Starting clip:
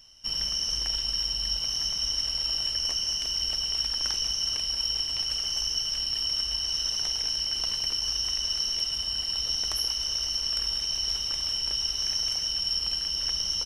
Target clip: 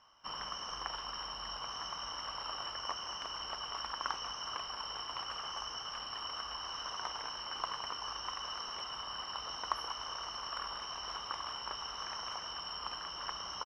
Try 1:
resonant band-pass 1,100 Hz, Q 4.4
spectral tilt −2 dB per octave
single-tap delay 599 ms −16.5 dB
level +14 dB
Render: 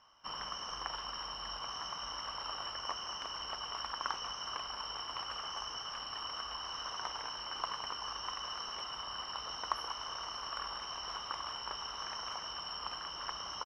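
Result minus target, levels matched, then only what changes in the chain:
echo 251 ms early
change: single-tap delay 850 ms −16.5 dB

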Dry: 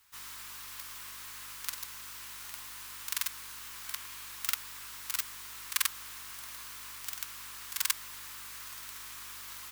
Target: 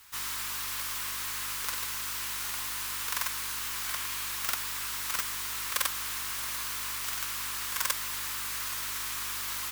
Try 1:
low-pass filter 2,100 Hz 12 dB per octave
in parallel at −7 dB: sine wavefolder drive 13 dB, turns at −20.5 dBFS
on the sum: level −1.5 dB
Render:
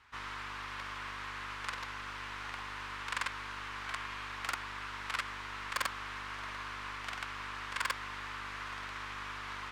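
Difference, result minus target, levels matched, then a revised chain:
2,000 Hz band +7.0 dB
in parallel at −7 dB: sine wavefolder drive 13 dB, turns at −20.5 dBFS
on the sum: level −1.5 dB

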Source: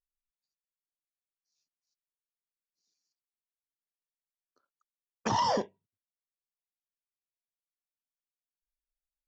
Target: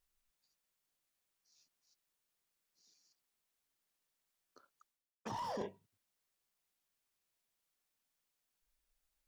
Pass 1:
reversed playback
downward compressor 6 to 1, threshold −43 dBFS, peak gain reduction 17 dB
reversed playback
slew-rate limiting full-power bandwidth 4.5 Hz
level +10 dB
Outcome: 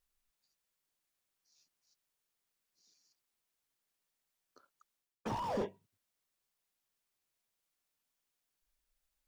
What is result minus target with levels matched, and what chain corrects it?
downward compressor: peak gain reduction −7 dB
reversed playback
downward compressor 6 to 1, threshold −51.5 dBFS, peak gain reduction 24 dB
reversed playback
slew-rate limiting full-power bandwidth 4.5 Hz
level +10 dB

